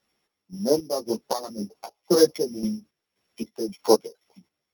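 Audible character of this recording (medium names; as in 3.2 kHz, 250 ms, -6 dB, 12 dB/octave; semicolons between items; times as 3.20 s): a buzz of ramps at a fixed pitch in blocks of 8 samples; chopped level 1.9 Hz, depth 65%, duty 50%; a shimmering, thickened sound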